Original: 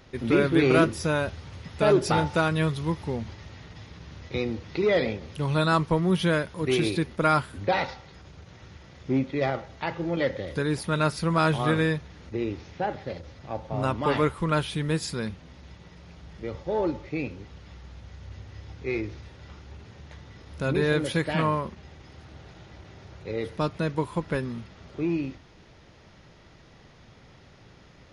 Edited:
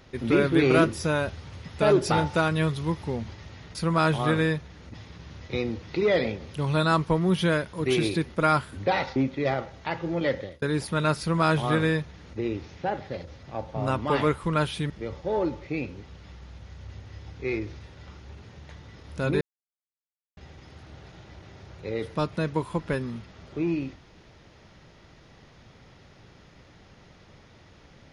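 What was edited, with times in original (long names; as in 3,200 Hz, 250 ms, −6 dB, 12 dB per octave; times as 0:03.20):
0:07.97–0:09.12: remove
0:10.33–0:10.58: fade out
0:11.15–0:12.34: duplicate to 0:03.75
0:14.86–0:16.32: remove
0:20.83–0:21.79: silence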